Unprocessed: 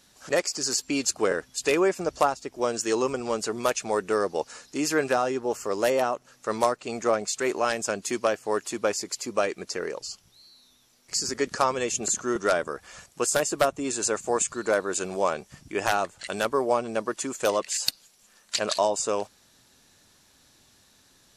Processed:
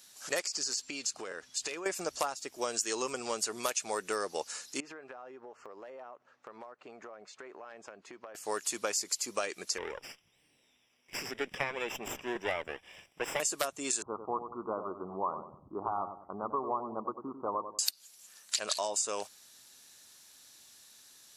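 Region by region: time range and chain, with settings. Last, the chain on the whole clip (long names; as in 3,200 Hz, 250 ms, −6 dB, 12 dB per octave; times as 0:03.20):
0:00.46–0:01.86: low-pass filter 6,700 Hz + downward compressor 5 to 1, threshold −32 dBFS
0:04.80–0:08.35: low-pass filter 1,300 Hz + low-shelf EQ 260 Hz −7.5 dB + downward compressor 16 to 1, threshold −37 dBFS
0:09.78–0:13.40: lower of the sound and its delayed copy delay 0.37 ms + Savitzky-Golay smoothing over 25 samples
0:14.02–0:17.79: Butterworth low-pass 1,200 Hz 72 dB per octave + comb filter 0.9 ms, depth 57% + feedback echo with a low-pass in the loop 95 ms, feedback 45%, low-pass 850 Hz, level −8 dB
whole clip: spectral tilt +3 dB per octave; downward compressor 4 to 1, threshold −25 dBFS; level −4 dB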